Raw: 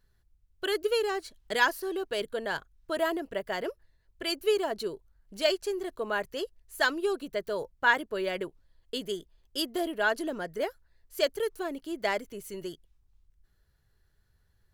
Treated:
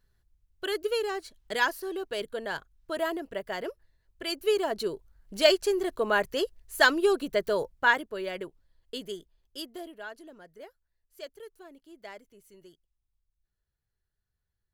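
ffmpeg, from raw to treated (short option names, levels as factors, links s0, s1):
-af "volume=1.88,afade=t=in:st=4.28:d=1.12:silence=0.446684,afade=t=out:st=7.49:d=0.61:silence=0.375837,afade=t=out:st=8.99:d=1.1:silence=0.237137"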